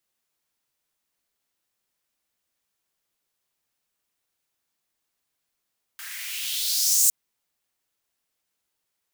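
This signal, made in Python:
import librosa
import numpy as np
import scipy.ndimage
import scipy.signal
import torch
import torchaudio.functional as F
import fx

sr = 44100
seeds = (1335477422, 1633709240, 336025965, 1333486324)

y = fx.riser_noise(sr, seeds[0], length_s=1.11, colour='white', kind='highpass', start_hz=1500.0, end_hz=7700.0, q=3.1, swell_db=20.0, law='exponential')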